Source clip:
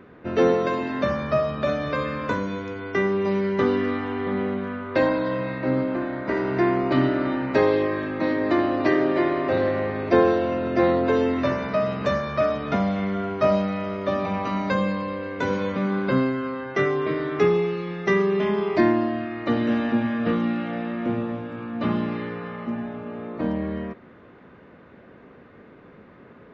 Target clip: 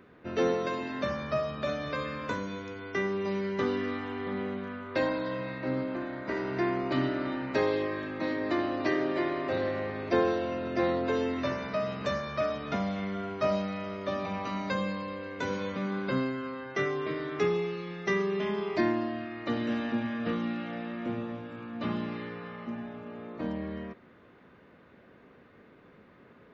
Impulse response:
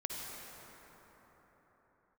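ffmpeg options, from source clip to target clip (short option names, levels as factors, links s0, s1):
-af "highshelf=f=3100:g=9,volume=0.376"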